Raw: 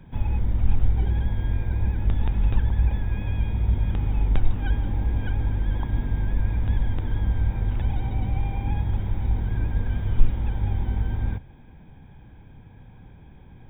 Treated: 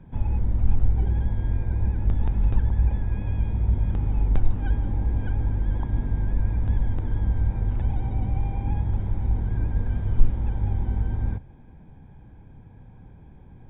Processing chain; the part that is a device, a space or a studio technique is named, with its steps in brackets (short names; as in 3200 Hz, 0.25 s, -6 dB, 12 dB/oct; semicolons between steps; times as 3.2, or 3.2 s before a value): through cloth (high shelf 2500 Hz -16 dB)